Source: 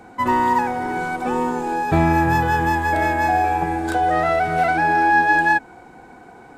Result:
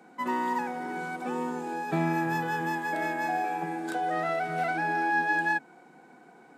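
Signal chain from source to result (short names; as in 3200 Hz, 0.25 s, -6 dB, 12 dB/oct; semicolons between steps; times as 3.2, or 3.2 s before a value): Chebyshev high-pass 150 Hz, order 5; bell 900 Hz -2.5 dB 0.62 oct; gain -9 dB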